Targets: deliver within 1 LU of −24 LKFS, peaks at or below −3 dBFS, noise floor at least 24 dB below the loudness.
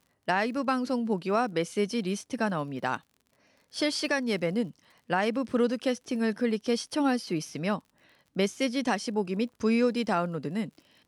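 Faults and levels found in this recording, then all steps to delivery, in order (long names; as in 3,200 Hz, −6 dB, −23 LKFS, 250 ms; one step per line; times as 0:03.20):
crackle rate 50 per second; integrated loudness −29.0 LKFS; sample peak −14.5 dBFS; target loudness −24.0 LKFS
→ click removal
level +5 dB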